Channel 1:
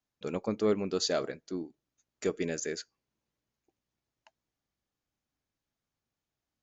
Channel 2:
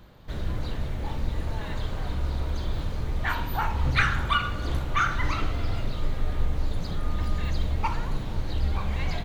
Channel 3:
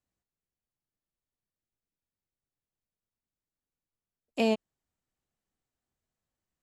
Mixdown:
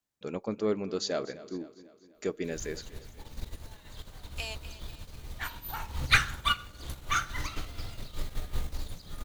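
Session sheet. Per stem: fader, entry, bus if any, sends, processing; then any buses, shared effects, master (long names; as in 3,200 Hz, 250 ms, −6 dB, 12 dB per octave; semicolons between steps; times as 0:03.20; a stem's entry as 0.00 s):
−1.5 dB, 0.00 s, no send, echo send −17 dB, low-pass filter 2,000 Hz 6 dB per octave
−1.5 dB, 2.15 s, no send, no echo send, high-shelf EQ 4,400 Hz +9.5 dB; expander for the loud parts 2.5 to 1, over −34 dBFS
−6.0 dB, 0.00 s, no send, echo send −14 dB, high-pass filter 1,200 Hz 12 dB per octave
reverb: not used
echo: repeating echo 248 ms, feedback 51%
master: high-shelf EQ 3,500 Hz +10 dB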